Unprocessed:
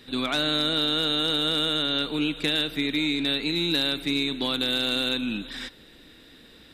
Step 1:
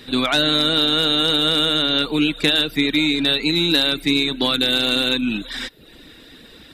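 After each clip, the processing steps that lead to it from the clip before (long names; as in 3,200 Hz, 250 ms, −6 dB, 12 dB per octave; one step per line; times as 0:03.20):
reverb reduction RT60 0.59 s
level +8.5 dB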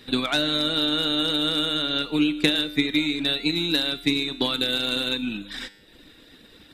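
transient designer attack +6 dB, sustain −3 dB
tuned comb filter 100 Hz, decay 0.85 s, harmonics all, mix 60%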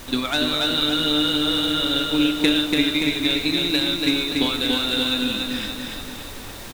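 background noise pink −39 dBFS
repeating echo 287 ms, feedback 53%, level −3.5 dB
convolution reverb, pre-delay 3 ms, DRR 11 dB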